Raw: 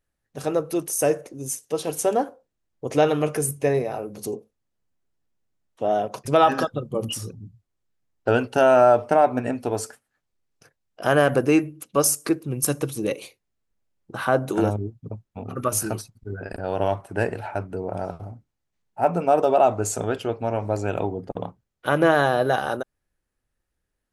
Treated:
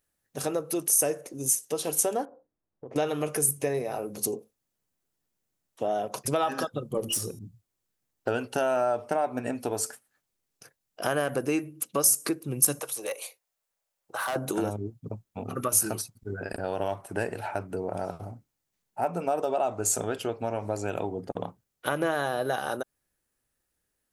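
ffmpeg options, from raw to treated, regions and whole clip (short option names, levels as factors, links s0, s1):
-filter_complex "[0:a]asettb=1/sr,asplit=3[s0][s1][s2];[s0]atrim=end=2.254[s3];[s1]atrim=start=2.25:end=2.96,asetpts=PTS-STARTPTS,afade=t=in:d=0.004:c=qsin,afade=t=out:st=0.706:d=0.004:c=qsin,lowpass=1100,bandreject=f=60:t=h:w=6,bandreject=f=120:t=h:w=6,bandreject=f=180:t=h:w=6,bandreject=f=240:t=h:w=6,bandreject=f=300:t=h:w=6,acompressor=threshold=0.0112:ratio=4:attack=3.2:release=140:knee=1:detection=peak[s4];[s2]atrim=start=2.956[s5];[s3][s4]acrossfade=d=0.004:c1=hsin:c2=qsin[s6];[s6][s5]acrossfade=d=0.004:c1=qsin:c2=hsin,asettb=1/sr,asplit=3[s7][s8][s9];[s7]atrim=end=6.974[s10];[s8]atrim=start=6.97:end=7.39,asetpts=PTS-STARTPTS,afade=t=in:d=0.004:c=qsin,afade=t=out:st=0.416:d=0.004:c=qsin,aeval=exprs='if(lt(val(0),0),0.708*val(0),val(0))':c=same,equalizer=f=440:t=o:w=1.1:g=6.5,bandreject=f=343:t=h:w=4,bandreject=f=686:t=h:w=4,bandreject=f=1029:t=h:w=4,bandreject=f=1372:t=h:w=4,bandreject=f=1715:t=h:w=4,bandreject=f=2058:t=h:w=4,bandreject=f=2401:t=h:w=4,bandreject=f=2744:t=h:w=4,bandreject=f=3087:t=h:w=4,bandreject=f=3430:t=h:w=4,bandreject=f=3773:t=h:w=4,bandreject=f=4116:t=h:w=4,bandreject=f=4459:t=h:w=4,bandreject=f=4802:t=h:w=4,bandreject=f=5145:t=h:w=4,bandreject=f=5488:t=h:w=4,bandreject=f=5831:t=h:w=4,bandreject=f=6174:t=h:w=4,bandreject=f=6517:t=h:w=4,bandreject=f=6860:t=h:w=4,bandreject=f=7203:t=h:w=4,bandreject=f=7546:t=h:w=4,bandreject=f=7889:t=h:w=4,bandreject=f=8232:t=h:w=4,bandreject=f=8575:t=h:w=4,bandreject=f=8918:t=h:w=4,bandreject=f=9261:t=h:w=4,bandreject=f=9604:t=h:w=4,bandreject=f=9947:t=h:w=4,bandreject=f=10290:t=h:w=4,bandreject=f=10633:t=h:w=4,bandreject=f=10976:t=h:w=4,bandreject=f=11319:t=h:w=4,bandreject=f=11662:t=h:w=4[s11];[s9]atrim=start=7.386[s12];[s10][s11]acrossfade=d=0.004:c1=hsin:c2=qsin[s13];[s13][s12]acrossfade=d=0.004:c1=qsin:c2=hsin,asettb=1/sr,asplit=3[s14][s15][s16];[s14]atrim=end=12.794[s17];[s15]atrim=start=12.79:end=14.36,asetpts=PTS-STARTPTS,afade=t=in:d=0.004:c=qsin,afade=t=out:st=1.566:d=0.004:c=qsin,lowshelf=f=410:t=q:w=1.5:g=-13,acrossover=split=290|720|2000|6100[s18][s19][s20][s21][s22];[s18]acompressor=threshold=0.00141:ratio=3[s23];[s19]acompressor=threshold=0.0141:ratio=3[s24];[s20]acompressor=threshold=0.0447:ratio=3[s25];[s21]acompressor=threshold=0.00355:ratio=3[s26];[s22]acompressor=threshold=0.00891:ratio=3[s27];[s23][s24][s25][s26][s27]amix=inputs=5:normalize=0,asoftclip=type=hard:threshold=0.0562[s28];[s16]atrim=start=14.356[s29];[s17][s28]acrossfade=d=0.004:c1=hsin:c2=qsin[s30];[s30][s29]acrossfade=d=0.004:c1=qsin:c2=hsin,lowshelf=f=74:g=-11,acompressor=threshold=0.0398:ratio=2.5,highshelf=f=6500:g=11.5"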